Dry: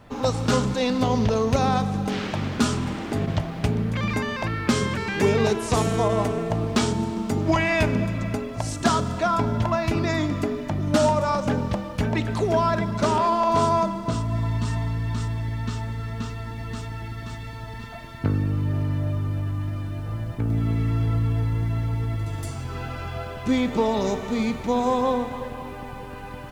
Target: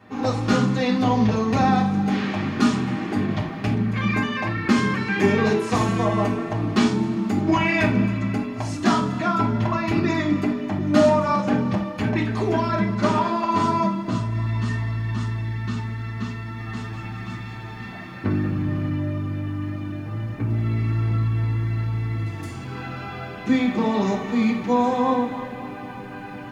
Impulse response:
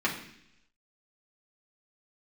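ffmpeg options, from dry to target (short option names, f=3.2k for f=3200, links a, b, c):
-filter_complex "[0:a]asettb=1/sr,asplit=3[a][b][c];[a]atrim=end=16.404[d];[b]atrim=start=16.4:end=18.89,asetpts=PTS-STARTPTS,afade=t=in:d=0.004:c=qsin,afade=t=out:st=2.486:d=0.004:c=qsin,asplit=6[e][f][g][h][i][j];[f]adelay=192,afreqshift=-120,volume=-8dB[k];[g]adelay=384,afreqshift=-240,volume=-14.6dB[l];[h]adelay=576,afreqshift=-360,volume=-21.1dB[m];[i]adelay=768,afreqshift=-480,volume=-27.7dB[n];[j]adelay=960,afreqshift=-600,volume=-34.2dB[o];[e][k][l][m][n][o]amix=inputs=6:normalize=0,atrim=end_sample=109809[p];[c]atrim=start=18.886[q];[d][p]acrossfade=d=0.004:c1=hsin:c2=qsin[r];[r][q]acrossfade=d=0.004:c1=qsin:c2=hsin[s];[1:a]atrim=start_sample=2205,atrim=end_sample=4410[t];[s][t]afir=irnorm=-1:irlink=0,volume=-7.5dB"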